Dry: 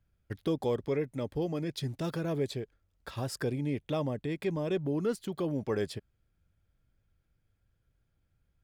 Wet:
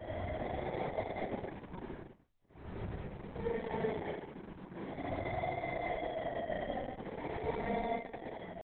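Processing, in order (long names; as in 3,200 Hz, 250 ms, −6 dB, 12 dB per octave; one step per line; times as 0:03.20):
delay that plays each chunk backwards 589 ms, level −7.5 dB
noise reduction from a noise print of the clip's start 12 dB
three-way crossover with the lows and the highs turned down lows −22 dB, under 560 Hz, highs −24 dB, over 7,400 Hz
in parallel at −1.5 dB: downward compressor 6 to 1, threshold −48 dBFS, peak gain reduction 15 dB
on the sum: pitch shifter +2.5 semitones
slack as between gear wheels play −45.5 dBFS
decimation without filtering 33×
pitch vibrato 6.6 Hz 71 cents
extreme stretch with random phases 15×, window 0.05 s, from 0:04.22
high-frequency loss of the air 490 metres
convolution reverb, pre-delay 30 ms, DRR −5 dB
level −3 dB
Opus 6 kbit/s 48,000 Hz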